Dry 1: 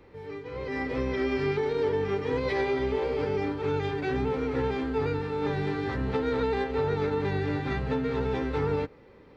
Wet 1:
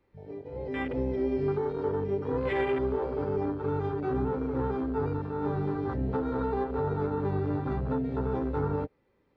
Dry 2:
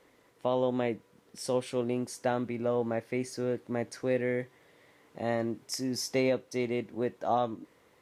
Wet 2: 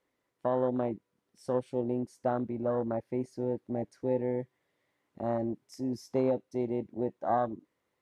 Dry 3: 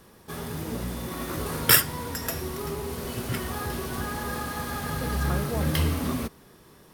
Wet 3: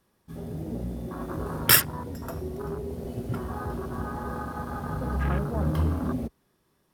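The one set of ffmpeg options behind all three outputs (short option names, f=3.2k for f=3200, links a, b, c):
-af "bandreject=f=460:w=12,afwtdn=0.0251"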